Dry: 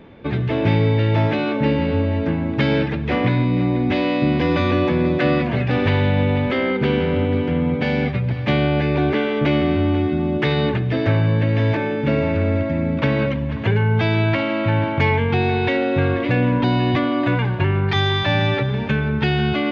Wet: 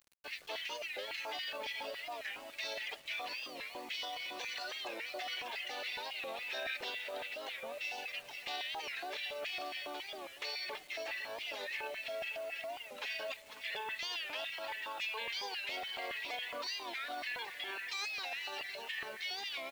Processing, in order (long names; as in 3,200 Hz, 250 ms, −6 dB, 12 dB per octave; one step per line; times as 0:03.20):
automatic gain control gain up to 10 dB
first difference
auto-filter high-pass square 3.6 Hz 490–1,700 Hz
hum removal 165 Hz, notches 11
brickwall limiter −27 dBFS, peak gain reduction 14.5 dB
reverb reduction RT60 2 s
formants moved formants +3 semitones
bit reduction 9 bits
repeating echo 506 ms, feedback 58%, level −16.5 dB
wow of a warped record 45 rpm, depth 160 cents
level −3 dB